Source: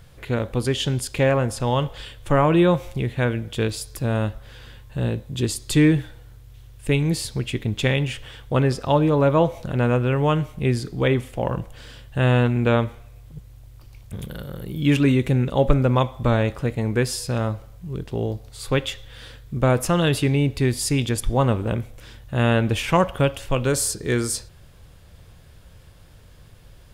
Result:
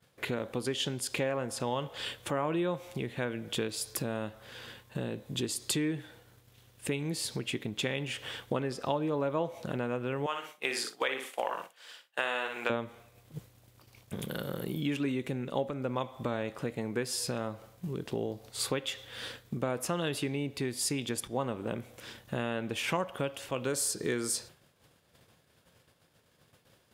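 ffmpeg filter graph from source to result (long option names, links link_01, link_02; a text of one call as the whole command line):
ffmpeg -i in.wav -filter_complex "[0:a]asettb=1/sr,asplit=3[link_01][link_02][link_03];[link_01]atrim=end=10.264[link_04];[link_02]atrim=start=10.26:end=12.7,asetpts=PTS-STARTPTS,afade=type=in:duration=0.004:curve=qsin,afade=type=out:start_time=2.436:duration=0.004:curve=qsin,highpass=810,aecho=1:1:60|120|180:0.473|0.118|0.0296,atrim=end_sample=107604[link_05];[link_03]atrim=start=12.696[link_06];[link_04][link_05]acrossfade=duration=0.004:curve1=hsin:curve2=qsin[link_07];[link_07][link_06]acrossfade=duration=0.004:curve1=qsin:curve2=hsin,agate=range=-33dB:threshold=-36dB:ratio=3:detection=peak,acompressor=threshold=-34dB:ratio=6,highpass=200,volume=5.5dB" out.wav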